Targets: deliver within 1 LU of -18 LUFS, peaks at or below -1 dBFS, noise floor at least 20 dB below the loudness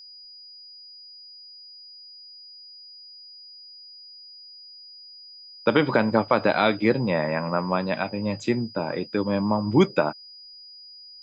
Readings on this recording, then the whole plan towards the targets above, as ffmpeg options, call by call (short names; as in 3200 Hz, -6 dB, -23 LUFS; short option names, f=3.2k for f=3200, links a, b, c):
steady tone 4900 Hz; tone level -43 dBFS; loudness -23.5 LUFS; peak -4.5 dBFS; loudness target -18.0 LUFS
-> -af "bandreject=f=4.9k:w=30"
-af "volume=5.5dB,alimiter=limit=-1dB:level=0:latency=1"